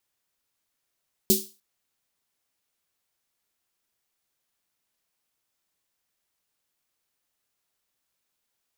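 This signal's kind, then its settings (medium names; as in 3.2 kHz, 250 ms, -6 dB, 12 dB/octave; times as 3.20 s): snare drum length 0.30 s, tones 210 Hz, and 380 Hz, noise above 3.8 kHz, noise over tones 1 dB, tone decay 0.25 s, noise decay 0.33 s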